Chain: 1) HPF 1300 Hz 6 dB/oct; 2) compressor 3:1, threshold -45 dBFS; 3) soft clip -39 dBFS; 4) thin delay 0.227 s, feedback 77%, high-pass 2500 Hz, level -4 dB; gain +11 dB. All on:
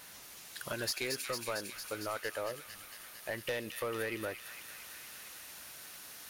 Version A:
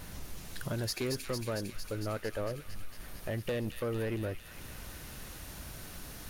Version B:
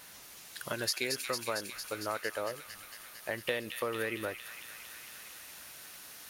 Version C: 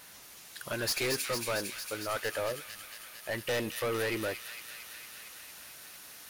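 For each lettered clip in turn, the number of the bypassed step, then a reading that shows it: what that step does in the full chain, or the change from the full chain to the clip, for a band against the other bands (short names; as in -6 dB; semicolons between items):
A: 1, 125 Hz band +15.5 dB; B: 3, distortion -13 dB; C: 2, crest factor change -1.5 dB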